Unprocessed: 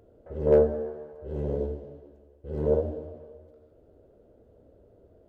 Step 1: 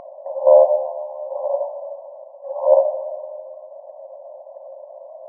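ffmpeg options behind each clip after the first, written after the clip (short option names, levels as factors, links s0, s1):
-filter_complex "[0:a]afftfilt=real='re*between(b*sr/4096,520,1100)':imag='im*between(b*sr/4096,520,1100)':win_size=4096:overlap=0.75,asplit=2[s0][s1];[s1]acompressor=mode=upward:threshold=0.00891:ratio=2.5,volume=1.19[s2];[s0][s2]amix=inputs=2:normalize=0,alimiter=level_in=4.22:limit=0.891:release=50:level=0:latency=1,volume=0.891"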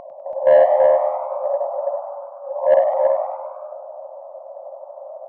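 -filter_complex "[0:a]asplit=2[s0][s1];[s1]aecho=0:1:331:0.668[s2];[s0][s2]amix=inputs=2:normalize=0,acontrast=22,asplit=2[s3][s4];[s4]asplit=6[s5][s6][s7][s8][s9][s10];[s5]adelay=99,afreqshift=110,volume=0.282[s11];[s6]adelay=198,afreqshift=220,volume=0.15[s12];[s7]adelay=297,afreqshift=330,volume=0.0794[s13];[s8]adelay=396,afreqshift=440,volume=0.0422[s14];[s9]adelay=495,afreqshift=550,volume=0.0221[s15];[s10]adelay=594,afreqshift=660,volume=0.0117[s16];[s11][s12][s13][s14][s15][s16]amix=inputs=6:normalize=0[s17];[s3][s17]amix=inputs=2:normalize=0,volume=0.596"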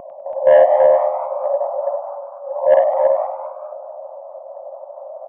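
-filter_complex "[0:a]acrossover=split=620[s0][s1];[s0]aeval=exprs='val(0)*(1-0.5/2+0.5/2*cos(2*PI*4.5*n/s))':c=same[s2];[s1]aeval=exprs='val(0)*(1-0.5/2-0.5/2*cos(2*PI*4.5*n/s))':c=same[s3];[s2][s3]amix=inputs=2:normalize=0,aresample=8000,aresample=44100,volume=1.68"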